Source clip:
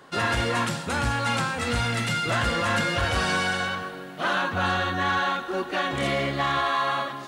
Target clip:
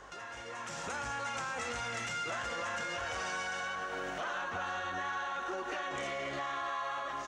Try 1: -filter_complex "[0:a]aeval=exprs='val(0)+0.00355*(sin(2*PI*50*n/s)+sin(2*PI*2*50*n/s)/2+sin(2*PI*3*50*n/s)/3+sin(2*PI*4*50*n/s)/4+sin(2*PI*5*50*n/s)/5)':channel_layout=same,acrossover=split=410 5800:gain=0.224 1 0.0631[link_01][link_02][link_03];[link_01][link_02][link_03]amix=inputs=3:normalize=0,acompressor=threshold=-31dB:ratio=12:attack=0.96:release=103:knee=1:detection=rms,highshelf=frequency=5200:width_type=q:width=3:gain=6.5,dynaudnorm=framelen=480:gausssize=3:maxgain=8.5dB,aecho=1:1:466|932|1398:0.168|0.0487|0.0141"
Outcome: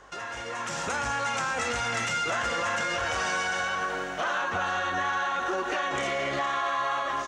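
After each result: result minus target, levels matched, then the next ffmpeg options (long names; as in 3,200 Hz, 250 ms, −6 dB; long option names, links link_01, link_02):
echo 165 ms late; downward compressor: peak gain reduction −8.5 dB
-filter_complex "[0:a]aeval=exprs='val(0)+0.00355*(sin(2*PI*50*n/s)+sin(2*PI*2*50*n/s)/2+sin(2*PI*3*50*n/s)/3+sin(2*PI*4*50*n/s)/4+sin(2*PI*5*50*n/s)/5)':channel_layout=same,acrossover=split=410 5800:gain=0.224 1 0.0631[link_01][link_02][link_03];[link_01][link_02][link_03]amix=inputs=3:normalize=0,acompressor=threshold=-31dB:ratio=12:attack=0.96:release=103:knee=1:detection=rms,highshelf=frequency=5200:width_type=q:width=3:gain=6.5,dynaudnorm=framelen=480:gausssize=3:maxgain=8.5dB,aecho=1:1:301|602|903:0.168|0.0487|0.0141"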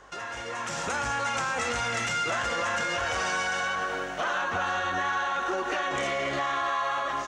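downward compressor: peak gain reduction −8.5 dB
-filter_complex "[0:a]aeval=exprs='val(0)+0.00355*(sin(2*PI*50*n/s)+sin(2*PI*2*50*n/s)/2+sin(2*PI*3*50*n/s)/3+sin(2*PI*4*50*n/s)/4+sin(2*PI*5*50*n/s)/5)':channel_layout=same,acrossover=split=410 5800:gain=0.224 1 0.0631[link_01][link_02][link_03];[link_01][link_02][link_03]amix=inputs=3:normalize=0,acompressor=threshold=-40.5dB:ratio=12:attack=0.96:release=103:knee=1:detection=rms,highshelf=frequency=5200:width_type=q:width=3:gain=6.5,dynaudnorm=framelen=480:gausssize=3:maxgain=8.5dB,aecho=1:1:301|602|903:0.168|0.0487|0.0141"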